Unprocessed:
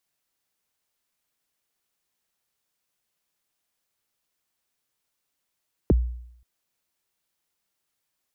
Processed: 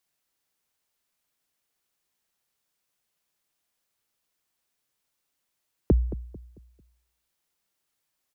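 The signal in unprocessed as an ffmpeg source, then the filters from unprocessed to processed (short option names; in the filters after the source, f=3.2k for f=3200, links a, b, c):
-f lavfi -i "aevalsrc='0.237*pow(10,-3*t/0.72)*sin(2*PI*(520*0.024/log(60/520)*(exp(log(60/520)*min(t,0.024)/0.024)-1)+60*max(t-0.024,0)))':d=0.53:s=44100"
-filter_complex "[0:a]asplit=2[a][b];[b]adelay=222,lowpass=f=810:p=1,volume=-13.5dB,asplit=2[c][d];[d]adelay=222,lowpass=f=810:p=1,volume=0.38,asplit=2[e][f];[f]adelay=222,lowpass=f=810:p=1,volume=0.38,asplit=2[g][h];[h]adelay=222,lowpass=f=810:p=1,volume=0.38[i];[a][c][e][g][i]amix=inputs=5:normalize=0"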